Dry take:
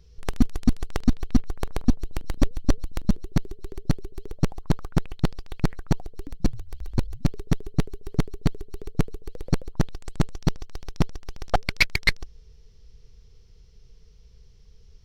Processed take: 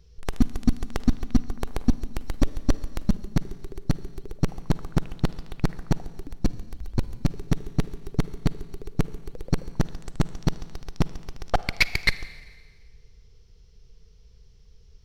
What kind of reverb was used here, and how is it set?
Schroeder reverb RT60 1.6 s, DRR 15.5 dB; trim -1 dB

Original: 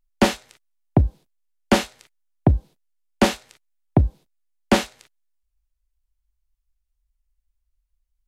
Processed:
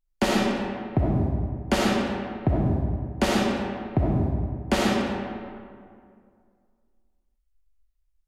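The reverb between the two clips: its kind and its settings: algorithmic reverb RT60 2.2 s, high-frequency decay 0.55×, pre-delay 20 ms, DRR -5 dB; trim -7 dB

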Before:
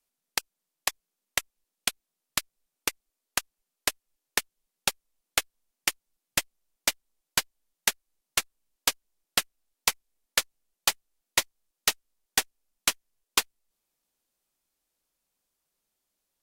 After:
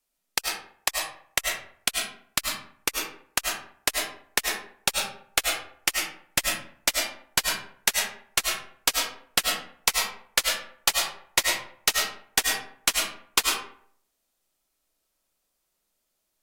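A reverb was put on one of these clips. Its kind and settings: algorithmic reverb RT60 0.59 s, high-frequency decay 0.6×, pre-delay 60 ms, DRR -0.5 dB; trim +1.5 dB

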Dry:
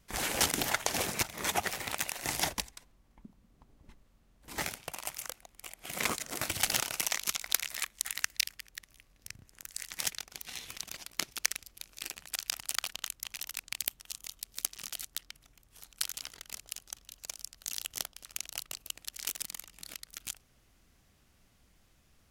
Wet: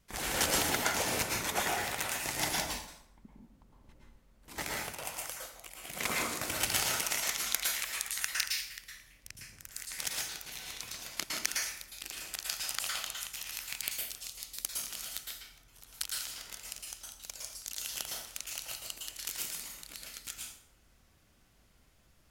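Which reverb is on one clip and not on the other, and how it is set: plate-style reverb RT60 0.7 s, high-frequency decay 0.75×, pre-delay 100 ms, DRR -3 dB; trim -3.5 dB

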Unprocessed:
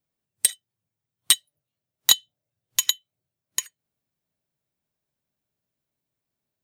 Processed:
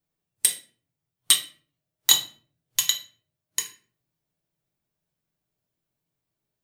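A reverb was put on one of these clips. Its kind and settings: simulated room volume 35 m³, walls mixed, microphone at 0.45 m; trim -1.5 dB

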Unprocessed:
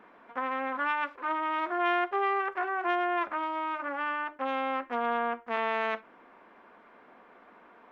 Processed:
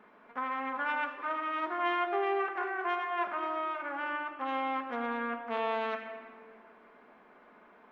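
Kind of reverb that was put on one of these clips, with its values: simulated room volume 3800 m³, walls mixed, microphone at 1.4 m; trim -4 dB

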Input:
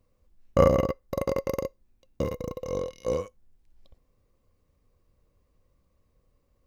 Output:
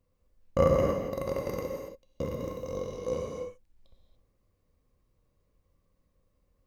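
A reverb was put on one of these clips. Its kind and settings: gated-style reverb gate 310 ms flat, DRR 0 dB; trim -6 dB

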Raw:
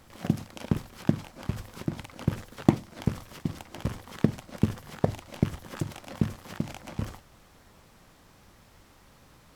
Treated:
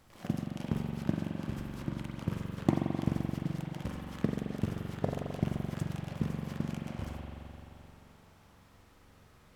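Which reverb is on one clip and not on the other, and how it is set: spring tank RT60 3.3 s, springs 43 ms, chirp 35 ms, DRR -1 dB; trim -7.5 dB

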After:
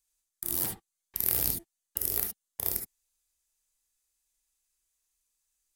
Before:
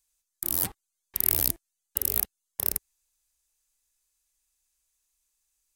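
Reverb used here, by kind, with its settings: gated-style reverb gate 90 ms rising, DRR 3.5 dB; trim -4.5 dB

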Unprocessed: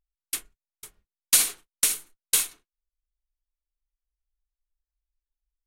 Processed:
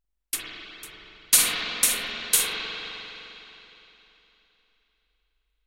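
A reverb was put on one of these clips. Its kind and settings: spring tank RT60 3.4 s, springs 43/51 ms, chirp 25 ms, DRR -5 dB; trim +1 dB

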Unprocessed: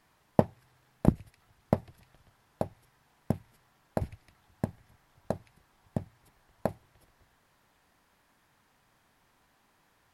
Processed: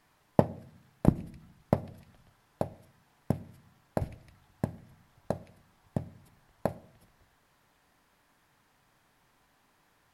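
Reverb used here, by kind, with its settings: simulated room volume 820 m³, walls furnished, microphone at 0.37 m

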